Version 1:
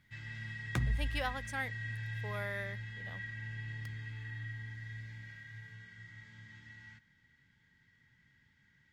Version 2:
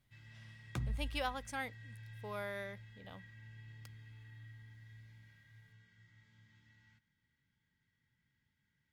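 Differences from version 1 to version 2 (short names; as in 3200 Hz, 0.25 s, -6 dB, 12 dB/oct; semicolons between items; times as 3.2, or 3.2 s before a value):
first sound -10.5 dB; second sound -5.5 dB; master: add bell 1800 Hz -7 dB 0.4 oct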